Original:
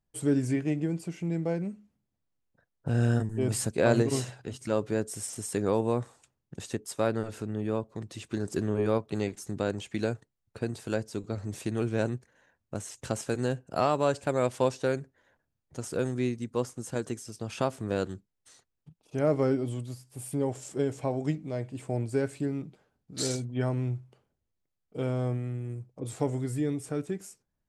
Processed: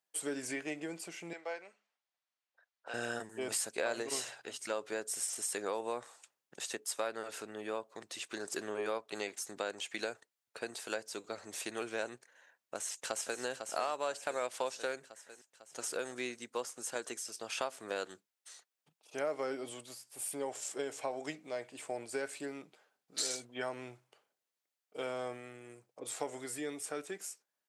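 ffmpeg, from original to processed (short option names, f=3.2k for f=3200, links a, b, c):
-filter_complex "[0:a]asettb=1/sr,asplit=3[a][b][c];[a]atrim=end=1.334[d];[b]atrim=start=1.33:end=2.94,asetpts=PTS-STARTPTS,afade=t=in:d=0.004:c=qsin,afade=t=out:st=1.606:d=0.004:c=qsin,highpass=660,lowpass=5k[e];[c]atrim=start=2.936[f];[d][e]acrossfade=d=0.004:c1=hsin:c2=qsin[g];[g][f]acrossfade=d=0.004:c1=qsin:c2=hsin,asplit=2[h][i];[i]afade=t=in:st=12.76:d=0.01,afade=t=out:st=13.41:d=0.01,aecho=0:1:500|1000|1500|2000|2500|3000|3500|4000|4500:0.375837|0.244294|0.158791|0.103214|0.0670893|0.0436081|0.0283452|0.0184244|0.0119759[j];[h][j]amix=inputs=2:normalize=0,highpass=720,equalizer=f=990:w=1.5:g=-2.5,acompressor=threshold=-37dB:ratio=3,volume=3.5dB"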